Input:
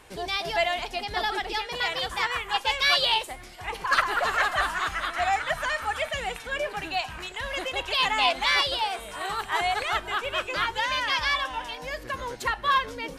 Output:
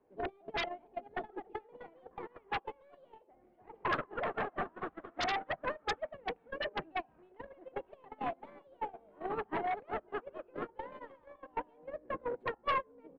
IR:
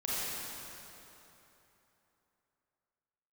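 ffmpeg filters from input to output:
-filter_complex "[0:a]bandreject=f=86.33:t=h:w=4,bandreject=f=172.66:t=h:w=4,bandreject=f=258.99:t=h:w=4,bandreject=f=345.32:t=h:w=4,bandreject=f=431.65:t=h:w=4,bandreject=f=517.98:t=h:w=4,bandreject=f=604.31:t=h:w=4,bandreject=f=690.64:t=h:w=4,bandreject=f=776.97:t=h:w=4,bandreject=f=863.3:t=h:w=4,bandreject=f=949.63:t=h:w=4,bandreject=f=1.03596k:t=h:w=4,bandreject=f=1.12229k:t=h:w=4,bandreject=f=1.20862k:t=h:w=4,bandreject=f=1.29495k:t=h:w=4,bandreject=f=1.38128k:t=h:w=4,bandreject=f=1.46761k:t=h:w=4,acompressor=threshold=-33dB:ratio=5,asplit=2[a][b];[b]aecho=0:1:73:0.0708[c];[a][c]amix=inputs=2:normalize=0,aeval=exprs='clip(val(0),-1,0.0075)':c=same,acrossover=split=190 2400:gain=0.112 1 0.0631[d][e][f];[d][e][f]amix=inputs=3:normalize=0,agate=range=-43dB:threshold=-36dB:ratio=16:detection=peak,acrossover=split=650[g][h];[g]aeval=exprs='0.00668*sin(PI/2*7.08*val(0)/0.00668)':c=same[i];[h]equalizer=f=5.7k:t=o:w=0.64:g=-11.5[j];[i][j]amix=inputs=2:normalize=0,volume=11.5dB"

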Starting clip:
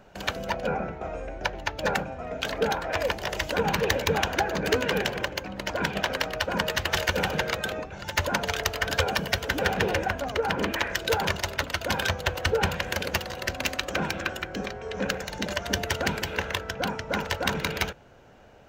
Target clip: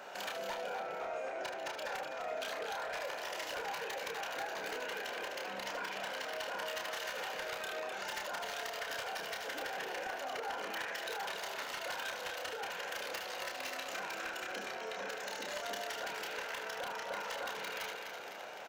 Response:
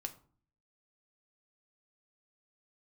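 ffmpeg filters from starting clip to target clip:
-filter_complex "[0:a]acompressor=threshold=-35dB:ratio=20,highpass=600,asplit=2[a][b];[b]aecho=0:1:254|508|762|1016|1270:0.299|0.134|0.0605|0.0272|0.0122[c];[a][c]amix=inputs=2:normalize=0,asoftclip=type=hard:threshold=-35.5dB,alimiter=level_in=19dB:limit=-24dB:level=0:latency=1:release=25,volume=-19dB,asplit=2[d][e];[e]aecho=0:1:30|76:0.631|0.376[f];[d][f]amix=inputs=2:normalize=0,volume=7.5dB"

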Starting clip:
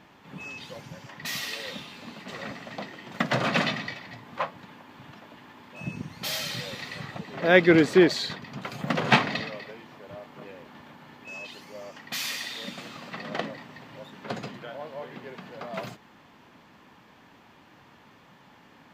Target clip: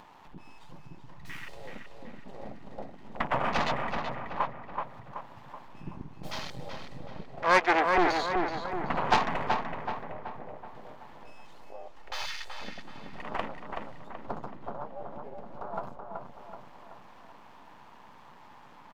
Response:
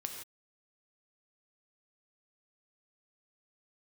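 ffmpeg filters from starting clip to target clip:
-filter_complex "[0:a]asettb=1/sr,asplit=3[a][b][c];[a]atrim=end=11.984[d];[b]atrim=start=11.98:end=12.57,asetpts=PTS-STARTPTS,afade=t=in:d=0.004:c=qsin,afade=t=out:st=0.586:d=0.004:c=qsin,aecho=1:1:2.3:0.78,atrim=end_sample=26019[e];[c]atrim=start=12.566[f];[d][e]acrossfade=d=0.004:c1=hsin:c2=qsin[g];[g][f]acrossfade=d=0.004:c1=qsin:c2=hsin,asettb=1/sr,asplit=3[h][i][j];[h]atrim=end=13.164[k];[i]atrim=start=13.16:end=14.07,asetpts=PTS-STARTPTS,afade=t=in:d=0.004:c=qsin,afade=t=out:st=0.906:d=0.004:c=qsin,equalizer=f=5.6k:t=o:w=2.5:g=7.5[l];[j]atrim=start=14.066[m];[k][l]acrossfade=d=0.004:c1=hsin:c2=qsin[n];[n][m]acrossfade=d=0.004:c1=qsin:c2=hsin,aeval=exprs='max(val(0),0)':c=same,afwtdn=0.0126,asettb=1/sr,asplit=3[o][p][q];[o]atrim=end=7.284[r];[p]atrim=start=7.28:end=7.98,asetpts=PTS-STARTPTS,afade=t=in:d=0.004:c=qsin,afade=t=out:st=0.696:d=0.004:c=qsin,highpass=540[s];[q]atrim=start=7.976[t];[r][s]acrossfade=d=0.004:c1=hsin:c2=qsin[u];[u][t]acrossfade=d=0.004:c1=qsin:c2=hsin,acompressor=mode=upward:threshold=-40dB:ratio=2.5,equalizer=f=920:t=o:w=0.89:g=11,aeval=exprs='(tanh(3.55*val(0)+0.4)-tanh(0.4))/3.55':c=same,asplit=2[v][w];[w]adelay=378,lowpass=f=2.6k:p=1,volume=-4dB,asplit=2[x][y];[y]adelay=378,lowpass=f=2.6k:p=1,volume=0.52,asplit=2[z][aa];[aa]adelay=378,lowpass=f=2.6k:p=1,volume=0.52,asplit=2[ab][ac];[ac]adelay=378,lowpass=f=2.6k:p=1,volume=0.52,asplit=2[ad][ae];[ae]adelay=378,lowpass=f=2.6k:p=1,volume=0.52,asplit=2[af][ag];[ag]adelay=378,lowpass=f=2.6k:p=1,volume=0.52,asplit=2[ah][ai];[ai]adelay=378,lowpass=f=2.6k:p=1,volume=0.52[aj];[v][x][z][ab][ad][af][ah][aj]amix=inputs=8:normalize=0"

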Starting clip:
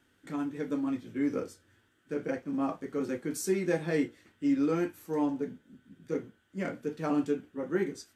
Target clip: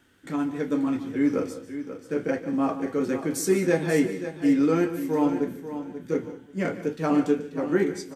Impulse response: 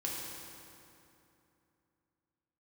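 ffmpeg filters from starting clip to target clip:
-filter_complex "[0:a]aecho=1:1:537|1074|1611:0.282|0.0564|0.0113,asplit=2[a][b];[1:a]atrim=start_sample=2205,atrim=end_sample=3528,adelay=145[c];[b][c]afir=irnorm=-1:irlink=0,volume=-13.5dB[d];[a][d]amix=inputs=2:normalize=0,volume=6.5dB"

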